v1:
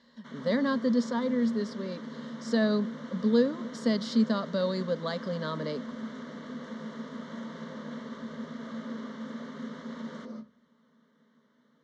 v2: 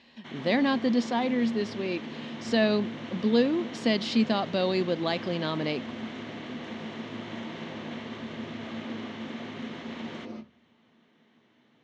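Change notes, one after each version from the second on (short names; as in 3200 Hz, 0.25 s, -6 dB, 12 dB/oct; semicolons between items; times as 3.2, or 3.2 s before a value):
master: remove fixed phaser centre 510 Hz, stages 8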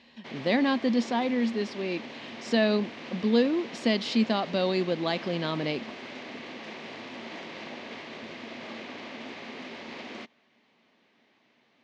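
reverb: off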